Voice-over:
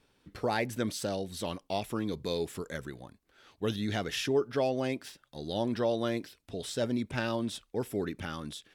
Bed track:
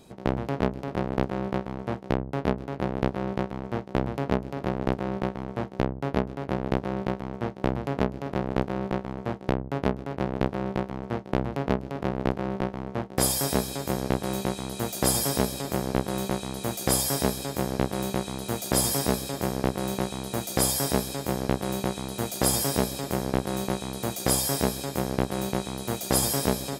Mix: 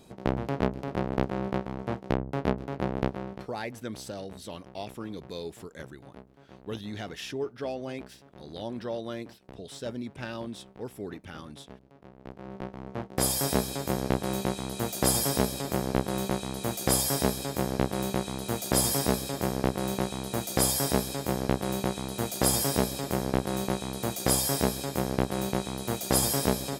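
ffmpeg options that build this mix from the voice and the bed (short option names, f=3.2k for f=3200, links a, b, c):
-filter_complex "[0:a]adelay=3050,volume=-5dB[a];[1:a]volume=20.5dB,afade=t=out:st=2.98:d=0.5:silence=0.0841395,afade=t=in:st=12.2:d=1.28:silence=0.0794328[b];[a][b]amix=inputs=2:normalize=0"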